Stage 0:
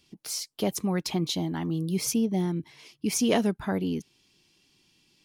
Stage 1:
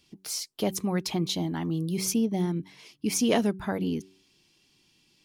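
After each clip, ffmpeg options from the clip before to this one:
-af "bandreject=f=94.93:t=h:w=4,bandreject=f=189.86:t=h:w=4,bandreject=f=284.79:t=h:w=4,bandreject=f=379.72:t=h:w=4"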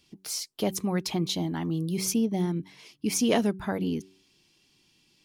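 -af anull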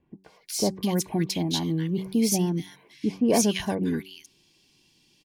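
-filter_complex "[0:a]asuperstop=centerf=1300:order=20:qfactor=6.4,acrossover=split=1600[a][b];[b]adelay=240[c];[a][c]amix=inputs=2:normalize=0,volume=2.5dB"

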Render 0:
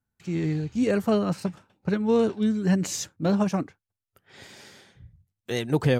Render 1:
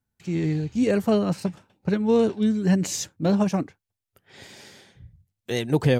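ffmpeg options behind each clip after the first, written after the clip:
-af "equalizer=f=1.3k:t=o:w=0.62:g=-4,volume=2dB"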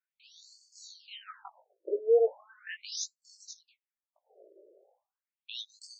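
-af "flanger=delay=17.5:depth=3.1:speed=2.2,afftfilt=real='re*between(b*sr/1024,440*pow(6200/440,0.5+0.5*sin(2*PI*0.38*pts/sr))/1.41,440*pow(6200/440,0.5+0.5*sin(2*PI*0.38*pts/sr))*1.41)':imag='im*between(b*sr/1024,440*pow(6200/440,0.5+0.5*sin(2*PI*0.38*pts/sr))/1.41,440*pow(6200/440,0.5+0.5*sin(2*PI*0.38*pts/sr))*1.41)':win_size=1024:overlap=0.75"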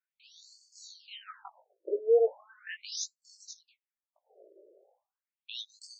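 -af anull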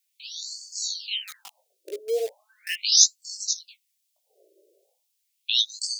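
-filter_complex "[0:a]acrossover=split=830|1600[a][b][c];[b]aeval=exprs='val(0)*gte(abs(val(0)),0.00299)':c=same[d];[a][d][c]amix=inputs=3:normalize=0,aexciter=amount=12.6:drive=3.9:freq=2k,volume=-3dB"

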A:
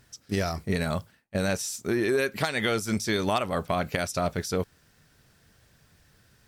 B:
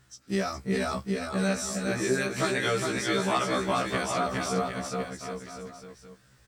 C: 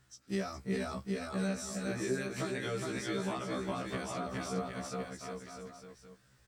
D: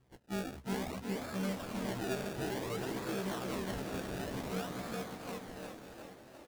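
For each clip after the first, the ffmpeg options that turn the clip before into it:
-af "equalizer=f=1.25k:t=o:w=0.33:g=5,equalizer=f=8k:t=o:w=0.33:g=4,equalizer=f=12.5k:t=o:w=0.33:g=-11,aecho=1:1:410|758.5|1055|1307|1521:0.631|0.398|0.251|0.158|0.1,afftfilt=real='re*1.73*eq(mod(b,3),0)':imag='im*1.73*eq(mod(b,3),0)':win_size=2048:overlap=0.75"
-filter_complex "[0:a]acrossover=split=450[a][b];[b]acompressor=threshold=-33dB:ratio=4[c];[a][c]amix=inputs=2:normalize=0,volume=-6dB"
-filter_complex "[0:a]asplit=2[a][b];[b]asoftclip=type=hard:threshold=-32dB,volume=-5dB[c];[a][c]amix=inputs=2:normalize=0,acrusher=samples=29:mix=1:aa=0.000001:lfo=1:lforange=29:lforate=0.56,asplit=9[d][e][f][g][h][i][j][k][l];[e]adelay=353,afreqshift=38,volume=-8dB[m];[f]adelay=706,afreqshift=76,volume=-12dB[n];[g]adelay=1059,afreqshift=114,volume=-16dB[o];[h]adelay=1412,afreqshift=152,volume=-20dB[p];[i]adelay=1765,afreqshift=190,volume=-24.1dB[q];[j]adelay=2118,afreqshift=228,volume=-28.1dB[r];[k]adelay=2471,afreqshift=266,volume=-32.1dB[s];[l]adelay=2824,afreqshift=304,volume=-36.1dB[t];[d][m][n][o][p][q][r][s][t]amix=inputs=9:normalize=0,volume=-6dB"

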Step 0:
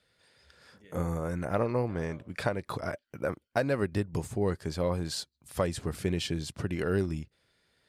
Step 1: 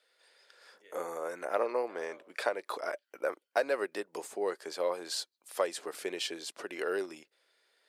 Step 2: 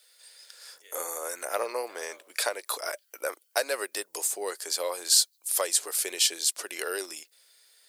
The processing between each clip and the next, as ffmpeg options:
-af "highpass=f=400:w=0.5412,highpass=f=400:w=1.3066"
-af "bass=f=250:g=-15,treble=f=4k:g=6,crystalizer=i=4:c=0"

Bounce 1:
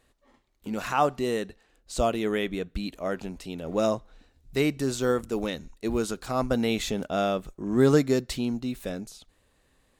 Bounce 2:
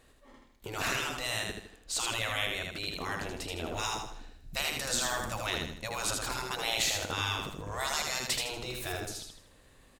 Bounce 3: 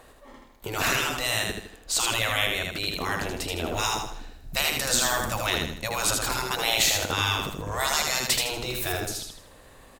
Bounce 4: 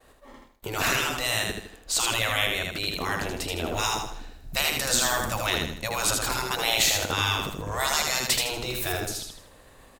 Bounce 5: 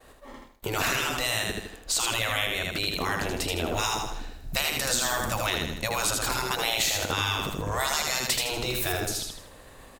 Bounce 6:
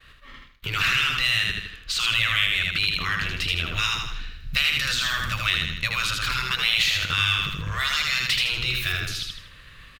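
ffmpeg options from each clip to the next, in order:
-af "afftfilt=real='re*lt(hypot(re,im),0.0708)':imag='im*lt(hypot(re,im),0.0708)':win_size=1024:overlap=0.75,aecho=1:1:79|158|237|316|395:0.668|0.267|0.107|0.0428|0.0171,volume=4.5dB"
-filter_complex "[0:a]equalizer=f=15k:w=1.1:g=7.5,acrossover=split=530|1200[a][b][c];[b]acompressor=mode=upward:threshold=-55dB:ratio=2.5[d];[a][d][c]amix=inputs=3:normalize=0,volume=7dB"
-af "agate=range=-33dB:threshold=-48dB:ratio=3:detection=peak"
-af "acompressor=threshold=-29dB:ratio=2.5,volume=3.5dB"
-filter_complex "[0:a]firequalizer=gain_entry='entry(150,0);entry(240,-12);entry(820,-20);entry(1200,0);entry(1900,3);entry(2800,7);entry(7600,-13);entry(15000,-11)':delay=0.05:min_phase=1,asplit=2[a][b];[b]asoftclip=type=hard:threshold=-23.5dB,volume=-6dB[c];[a][c]amix=inputs=2:normalize=0"

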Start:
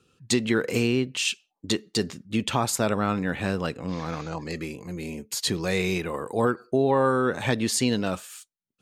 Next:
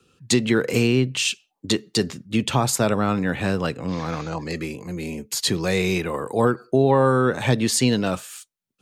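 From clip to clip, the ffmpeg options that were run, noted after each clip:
-filter_complex "[0:a]adynamicequalizer=threshold=0.00447:dfrequency=130:dqfactor=7.9:tfrequency=130:tqfactor=7.9:attack=5:release=100:ratio=0.375:range=3:mode=boostabove:tftype=bell,acrossover=split=120|990|3000[a][b][c][d];[c]alimiter=limit=-24dB:level=0:latency=1:release=163[e];[a][b][e][d]amix=inputs=4:normalize=0,volume=4dB"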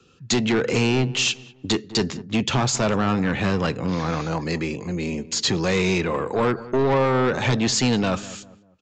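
-filter_complex "[0:a]aresample=16000,asoftclip=type=tanh:threshold=-19.5dB,aresample=44100,asplit=2[a][b];[b]adelay=197,lowpass=f=1.1k:p=1,volume=-16dB,asplit=2[c][d];[d]adelay=197,lowpass=f=1.1k:p=1,volume=0.39,asplit=2[e][f];[f]adelay=197,lowpass=f=1.1k:p=1,volume=0.39[g];[a][c][e][g]amix=inputs=4:normalize=0,volume=4dB"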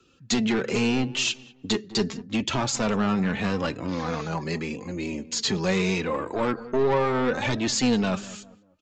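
-af "flanger=delay=3:depth=2.3:regen=29:speed=0.79:shape=triangular"

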